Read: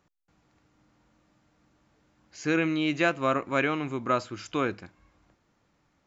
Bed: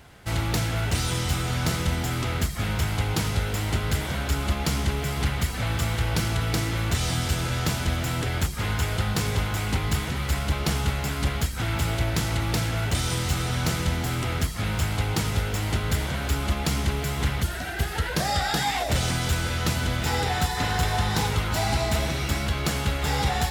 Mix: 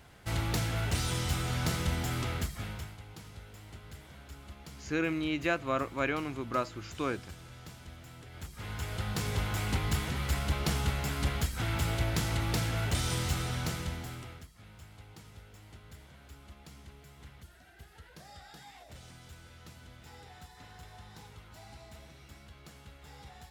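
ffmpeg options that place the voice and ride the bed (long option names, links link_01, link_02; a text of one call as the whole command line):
ffmpeg -i stem1.wav -i stem2.wav -filter_complex "[0:a]adelay=2450,volume=-5.5dB[link_01];[1:a]volume=11.5dB,afade=type=out:start_time=2.2:duration=0.77:silence=0.141254,afade=type=in:start_time=8.3:duration=1.28:silence=0.133352,afade=type=out:start_time=13.22:duration=1.24:silence=0.0891251[link_02];[link_01][link_02]amix=inputs=2:normalize=0" out.wav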